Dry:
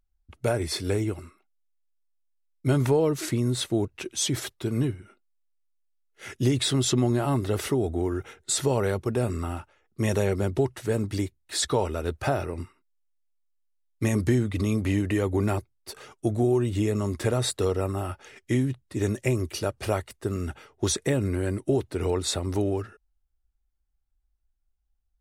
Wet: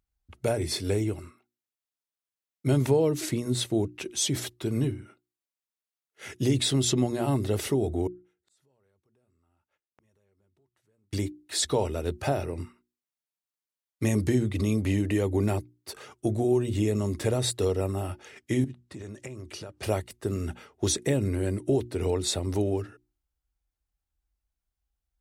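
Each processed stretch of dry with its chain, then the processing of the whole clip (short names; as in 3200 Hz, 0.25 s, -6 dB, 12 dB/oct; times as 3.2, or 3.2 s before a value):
8.07–11.13 compressor 3:1, threshold -36 dBFS + flipped gate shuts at -39 dBFS, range -33 dB + core saturation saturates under 1200 Hz
18.64–19.83 LPF 8800 Hz + compressor 16:1, threshold -35 dBFS
whole clip: HPF 51 Hz; notches 60/120/180/240/300/360 Hz; dynamic EQ 1300 Hz, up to -7 dB, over -46 dBFS, Q 1.4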